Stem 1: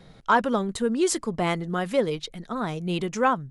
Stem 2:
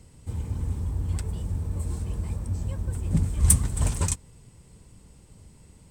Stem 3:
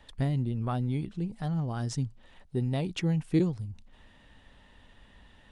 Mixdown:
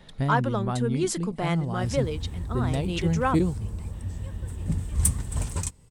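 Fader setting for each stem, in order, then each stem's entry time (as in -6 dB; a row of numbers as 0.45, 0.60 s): -4.0, -4.0, +2.0 dB; 0.00, 1.55, 0.00 s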